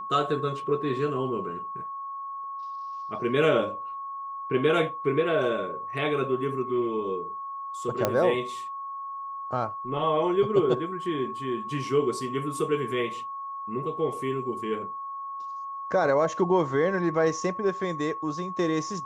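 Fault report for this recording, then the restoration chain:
whistle 1,100 Hz −33 dBFS
0:08.05: click −9 dBFS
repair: click removal
notch filter 1,100 Hz, Q 30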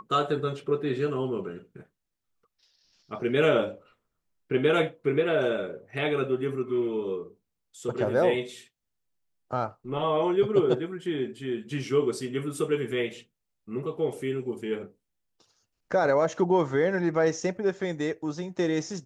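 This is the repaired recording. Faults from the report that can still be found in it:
none of them is left

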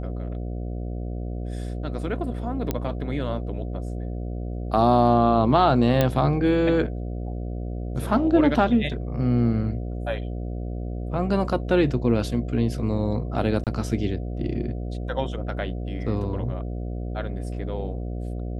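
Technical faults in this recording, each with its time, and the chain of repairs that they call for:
mains buzz 60 Hz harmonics 12 −30 dBFS
0:02.71: click −11 dBFS
0:06.01: click −7 dBFS
0:13.64–0:13.67: drop-out 27 ms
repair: click removal
hum removal 60 Hz, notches 12
repair the gap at 0:13.64, 27 ms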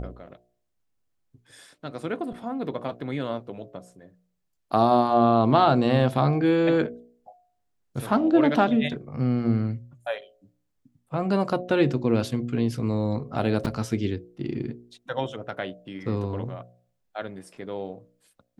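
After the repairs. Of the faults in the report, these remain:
none of them is left

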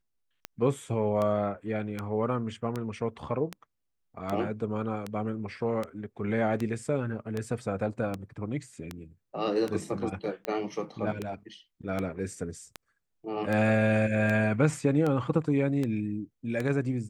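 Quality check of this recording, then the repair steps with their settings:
scratch tick 78 rpm −18 dBFS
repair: click removal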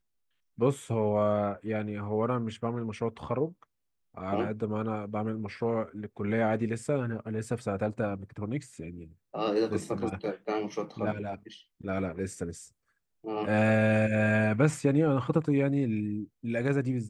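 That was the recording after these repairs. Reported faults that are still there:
none of them is left

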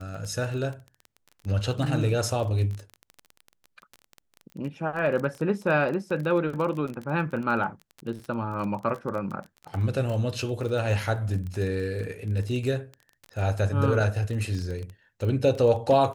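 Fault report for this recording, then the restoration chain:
surface crackle 20 per second −31 dBFS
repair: click removal

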